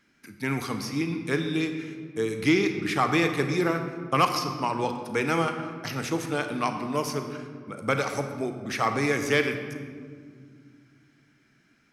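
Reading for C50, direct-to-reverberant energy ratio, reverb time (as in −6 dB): 7.0 dB, 6.0 dB, 2.0 s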